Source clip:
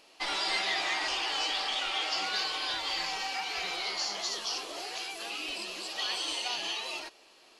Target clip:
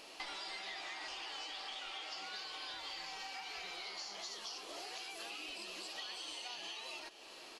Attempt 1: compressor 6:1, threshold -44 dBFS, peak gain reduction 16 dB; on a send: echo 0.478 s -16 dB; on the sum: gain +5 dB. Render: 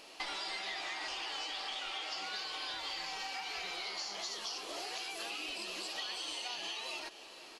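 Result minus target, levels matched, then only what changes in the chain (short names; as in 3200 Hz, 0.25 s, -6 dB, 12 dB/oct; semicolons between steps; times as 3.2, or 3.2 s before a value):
compressor: peak gain reduction -5 dB
change: compressor 6:1, threshold -50 dBFS, peak gain reduction 21 dB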